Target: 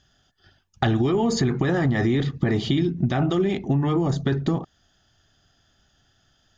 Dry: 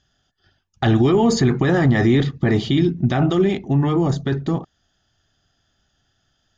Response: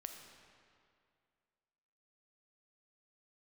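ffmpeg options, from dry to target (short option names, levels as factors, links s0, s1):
-af "acompressor=threshold=0.0794:ratio=6,volume=1.5"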